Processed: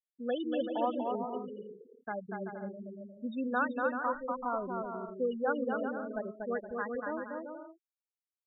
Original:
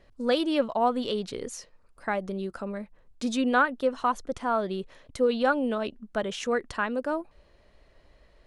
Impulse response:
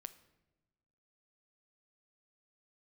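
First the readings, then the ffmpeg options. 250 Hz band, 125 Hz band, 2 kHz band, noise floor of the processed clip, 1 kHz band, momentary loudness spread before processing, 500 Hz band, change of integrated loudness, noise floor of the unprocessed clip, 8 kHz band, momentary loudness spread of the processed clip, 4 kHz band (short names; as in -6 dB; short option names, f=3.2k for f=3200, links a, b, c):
-7.0 dB, n/a, -7.5 dB, under -85 dBFS, -6.5 dB, 12 LU, -6.5 dB, -7.0 dB, -60 dBFS, under -35 dB, 13 LU, under -15 dB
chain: -af "afftfilt=real='re*gte(hypot(re,im),0.112)':imag='im*gte(hypot(re,im),0.112)':win_size=1024:overlap=0.75,aecho=1:1:240|384|470.4|522.2|553.3:0.631|0.398|0.251|0.158|0.1,volume=-8.5dB"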